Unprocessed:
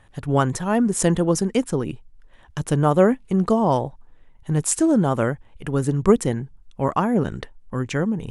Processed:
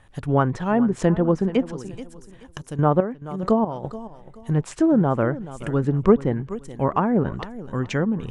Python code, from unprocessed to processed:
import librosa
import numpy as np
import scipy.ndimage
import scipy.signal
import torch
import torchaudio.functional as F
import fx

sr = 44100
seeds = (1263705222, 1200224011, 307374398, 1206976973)

y = fx.step_gate(x, sr, bpm=70, pattern='xxx.x..x.', floor_db=-12.0, edge_ms=4.5, at=(1.58, 3.83), fade=0.02)
y = fx.echo_feedback(y, sr, ms=429, feedback_pct=29, wet_db=-16.0)
y = fx.env_lowpass_down(y, sr, base_hz=1800.0, full_db=-16.0)